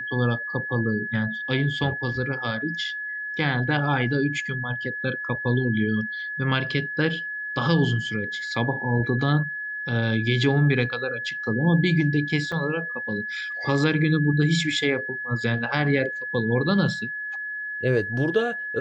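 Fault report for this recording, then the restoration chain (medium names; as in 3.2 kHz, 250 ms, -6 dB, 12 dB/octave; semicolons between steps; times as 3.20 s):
whine 1.7 kHz -29 dBFS
12.52 s: dropout 4.1 ms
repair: band-stop 1.7 kHz, Q 30; interpolate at 12.52 s, 4.1 ms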